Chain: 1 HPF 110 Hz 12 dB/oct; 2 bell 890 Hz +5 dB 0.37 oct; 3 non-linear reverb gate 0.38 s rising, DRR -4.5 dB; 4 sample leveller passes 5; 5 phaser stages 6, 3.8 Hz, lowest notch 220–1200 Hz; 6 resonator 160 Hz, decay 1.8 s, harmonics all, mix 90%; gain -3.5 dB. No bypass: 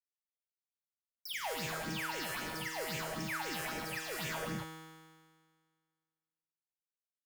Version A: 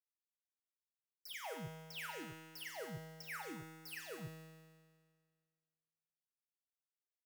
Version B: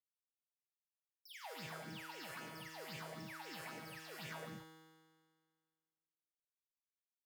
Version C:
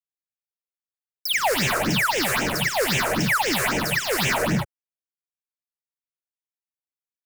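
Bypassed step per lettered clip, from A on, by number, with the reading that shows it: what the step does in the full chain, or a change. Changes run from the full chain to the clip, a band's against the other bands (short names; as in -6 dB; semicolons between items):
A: 3, 125 Hz band +3.5 dB; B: 4, crest factor change +2.5 dB; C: 6, loudness change +16.5 LU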